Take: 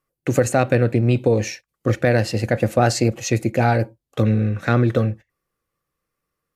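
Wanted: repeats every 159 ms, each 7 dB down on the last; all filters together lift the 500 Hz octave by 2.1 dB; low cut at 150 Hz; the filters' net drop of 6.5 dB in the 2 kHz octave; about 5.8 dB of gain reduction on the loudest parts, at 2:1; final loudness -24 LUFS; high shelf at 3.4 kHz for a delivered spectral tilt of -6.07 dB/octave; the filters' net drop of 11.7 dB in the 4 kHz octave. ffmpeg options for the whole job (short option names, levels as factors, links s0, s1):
-af "highpass=150,equalizer=f=500:t=o:g=3,equalizer=f=2000:t=o:g=-5.5,highshelf=f=3400:g=-8,equalizer=f=4000:t=o:g=-7.5,acompressor=threshold=0.0794:ratio=2,aecho=1:1:159|318|477|636|795:0.447|0.201|0.0905|0.0407|0.0183,volume=1.06"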